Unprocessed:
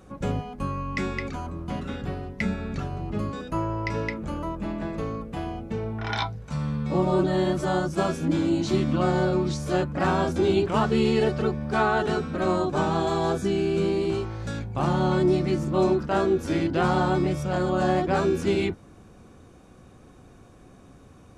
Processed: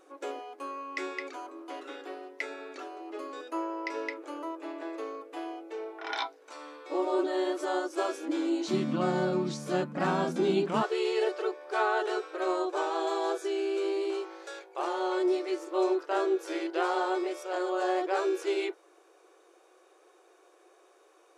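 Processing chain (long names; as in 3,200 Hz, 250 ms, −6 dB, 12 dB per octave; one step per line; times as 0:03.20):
linear-phase brick-wall high-pass 280 Hz, from 0:08.68 150 Hz, from 0:10.81 320 Hz
level −4.5 dB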